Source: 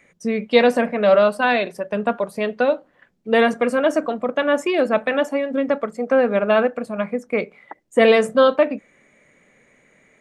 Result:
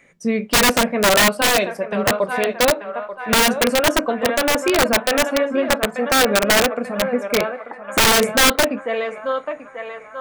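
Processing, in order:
feedback echo with a band-pass in the loop 887 ms, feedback 59%, band-pass 1,200 Hz, level −8 dB
flanger 0.21 Hz, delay 7.4 ms, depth 4.6 ms, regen −69%
wrap-around overflow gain 15 dB
level +6.5 dB

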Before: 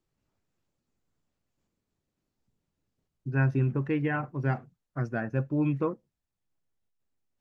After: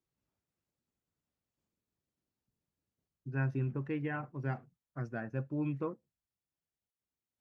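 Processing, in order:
high-pass filter 44 Hz
level −8 dB

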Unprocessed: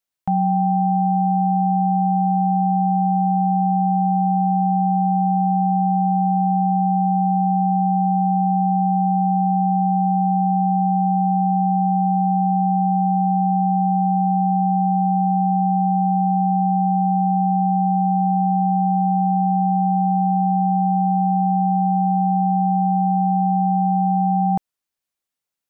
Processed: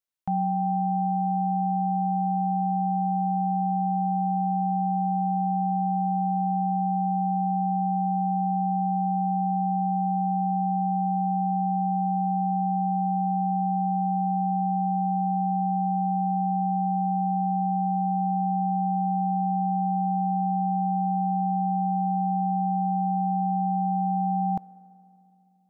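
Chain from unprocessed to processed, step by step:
on a send: high-pass filter 230 Hz 24 dB per octave + convolution reverb RT60 2.8 s, pre-delay 3 ms, DRR 17.5 dB
on the sum: level −7 dB

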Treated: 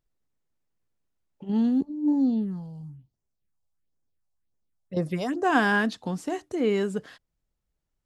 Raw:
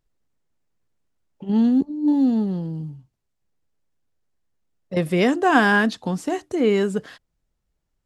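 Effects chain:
0:01.88–0:05.43: all-pass phaser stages 4, 0.6 Hz → 2.9 Hz, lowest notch 300–3,300 Hz
level −5.5 dB

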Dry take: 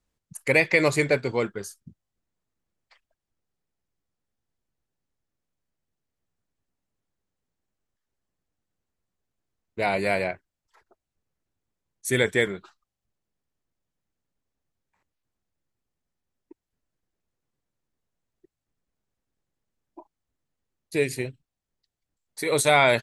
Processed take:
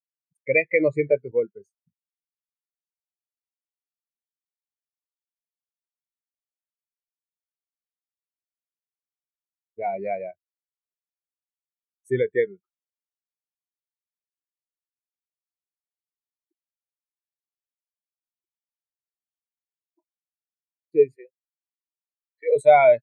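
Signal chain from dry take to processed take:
in parallel at −2.5 dB: downward compressor, threshold −29 dBFS, peak gain reduction 15 dB
0:21.16–0:22.56: on the sum: loudspeaker in its box 470–3,700 Hz, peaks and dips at 510 Hz +5 dB, 1,100 Hz −9 dB, 1,700 Hz +6 dB, 2,900 Hz +3 dB
every bin expanded away from the loudest bin 2.5 to 1

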